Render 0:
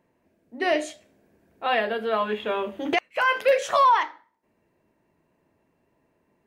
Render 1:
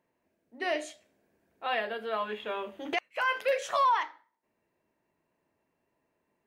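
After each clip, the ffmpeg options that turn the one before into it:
ffmpeg -i in.wav -af "lowshelf=frequency=400:gain=-7,volume=-6dB" out.wav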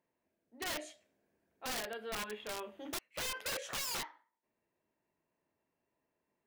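ffmpeg -i in.wav -af "aeval=exprs='(mod(20*val(0)+1,2)-1)/20':channel_layout=same,volume=-7dB" out.wav

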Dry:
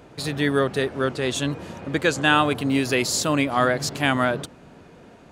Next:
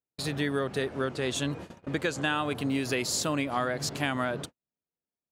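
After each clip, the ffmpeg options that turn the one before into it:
ffmpeg -i in.wav -af "agate=range=-48dB:threshold=-34dB:ratio=16:detection=peak,acompressor=threshold=-21dB:ratio=5,volume=-4dB" out.wav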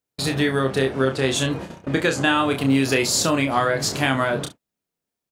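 ffmpeg -i in.wav -af "aecho=1:1:30|66:0.531|0.15,volume=8dB" out.wav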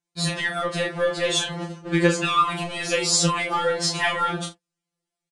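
ffmpeg -i in.wav -filter_complex "[0:a]asplit=2[link_01][link_02];[link_02]volume=19dB,asoftclip=hard,volume=-19dB,volume=-8dB[link_03];[link_01][link_03]amix=inputs=2:normalize=0,aresample=22050,aresample=44100,afftfilt=real='re*2.83*eq(mod(b,8),0)':imag='im*2.83*eq(mod(b,8),0)':win_size=2048:overlap=0.75" out.wav

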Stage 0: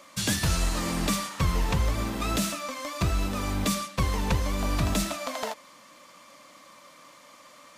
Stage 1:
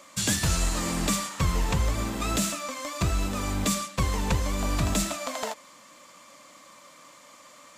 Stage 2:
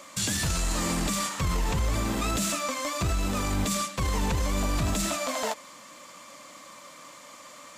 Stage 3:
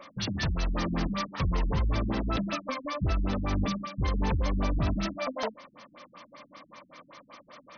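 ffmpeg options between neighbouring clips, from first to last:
ffmpeg -i in.wav -af "equalizer=frequency=7400:width_type=o:width=0.31:gain=7" out.wav
ffmpeg -i in.wav -af "alimiter=limit=-23dB:level=0:latency=1:release=14,volume=4dB" out.wav
ffmpeg -i in.wav -af "afftfilt=real='re*lt(b*sr/1024,250*pow(6500/250,0.5+0.5*sin(2*PI*5.2*pts/sr)))':imag='im*lt(b*sr/1024,250*pow(6500/250,0.5+0.5*sin(2*PI*5.2*pts/sr)))':win_size=1024:overlap=0.75" out.wav

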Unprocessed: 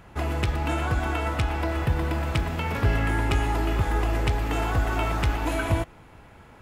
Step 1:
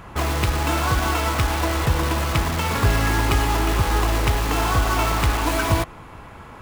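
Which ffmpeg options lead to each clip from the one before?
ffmpeg -i in.wav -filter_complex "[0:a]equalizer=frequency=1100:width=4.2:gain=8,asplit=2[link_01][link_02];[link_02]aeval=exprs='(mod(20*val(0)+1,2)-1)/20':channel_layout=same,volume=-3.5dB[link_03];[link_01][link_03]amix=inputs=2:normalize=0,volume=3.5dB" out.wav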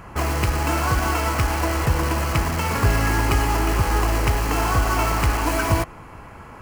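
ffmpeg -i in.wav -af "equalizer=frequency=3600:width=6.3:gain=-13" out.wav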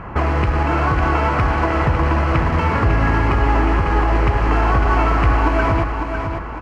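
ffmpeg -i in.wav -af "lowpass=2200,alimiter=limit=-16.5dB:level=0:latency=1:release=285,aecho=1:1:552|1104|1656|2208:0.473|0.17|0.0613|0.0221,volume=8.5dB" out.wav

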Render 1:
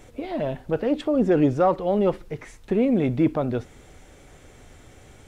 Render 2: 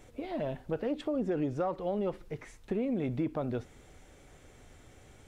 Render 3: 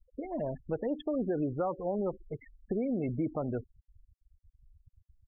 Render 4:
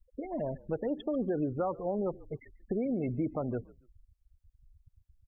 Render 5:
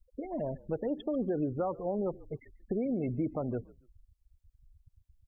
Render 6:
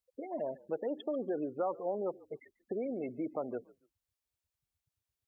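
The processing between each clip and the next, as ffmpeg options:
ffmpeg -i in.wav -af "acompressor=threshold=-21dB:ratio=6,volume=-7dB" out.wav
ffmpeg -i in.wav -af "afftfilt=real='re*gte(hypot(re,im),0.0158)':imag='im*gte(hypot(re,im),0.0158)':win_size=1024:overlap=0.75" out.wav
ffmpeg -i in.wav -filter_complex "[0:a]asplit=3[link_01][link_02][link_03];[link_02]adelay=141,afreqshift=-55,volume=-22.5dB[link_04];[link_03]adelay=282,afreqshift=-110,volume=-32.4dB[link_05];[link_01][link_04][link_05]amix=inputs=3:normalize=0" out.wav
ffmpeg -i in.wav -af "equalizer=frequency=1600:width=1.1:gain=-3.5" out.wav
ffmpeg -i in.wav -af "highpass=370" out.wav

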